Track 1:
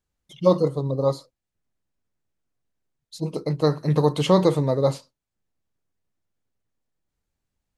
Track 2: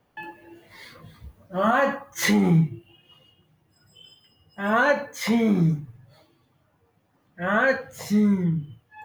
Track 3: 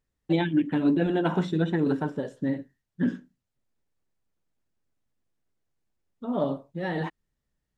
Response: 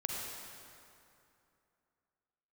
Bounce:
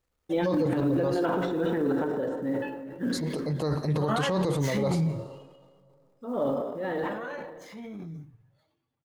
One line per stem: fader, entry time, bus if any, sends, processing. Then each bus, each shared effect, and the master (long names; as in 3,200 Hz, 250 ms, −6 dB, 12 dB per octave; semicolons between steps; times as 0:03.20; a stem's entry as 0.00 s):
−4.0 dB, 0.00 s, send −19.5 dB, no echo send, no processing
0:05.16 −8 dB → 0:05.74 −20 dB, 2.45 s, no send, echo send −18 dB, running median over 3 samples
−5.5 dB, 0.00 s, send −5.5 dB, no echo send, high-shelf EQ 3,200 Hz −9 dB; log-companded quantiser 8 bits; thirty-one-band graphic EQ 160 Hz −11 dB, 500 Hz +8 dB, 1,250 Hz +5 dB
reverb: on, RT60 2.7 s, pre-delay 38 ms
echo: single-tap delay 71 ms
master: transient designer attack −4 dB, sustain +8 dB; brickwall limiter −18 dBFS, peak gain reduction 9 dB